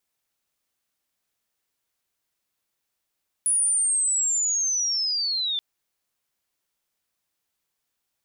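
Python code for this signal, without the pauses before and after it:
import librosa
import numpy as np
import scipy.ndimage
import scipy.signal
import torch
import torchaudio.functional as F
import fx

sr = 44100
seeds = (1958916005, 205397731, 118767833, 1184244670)

y = fx.chirp(sr, length_s=2.13, from_hz=9900.0, to_hz=3500.0, law='linear', from_db=-18.5, to_db=-23.5)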